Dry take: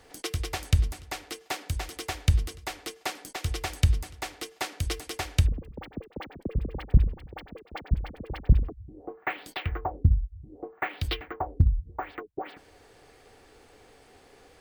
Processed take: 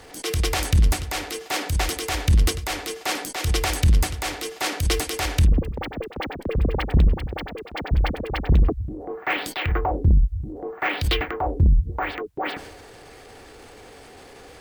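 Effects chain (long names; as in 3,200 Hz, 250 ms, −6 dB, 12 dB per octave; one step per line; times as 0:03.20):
transient designer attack −8 dB, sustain +6 dB
harmonic generator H 5 −11 dB, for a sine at −10.5 dBFS
level +3 dB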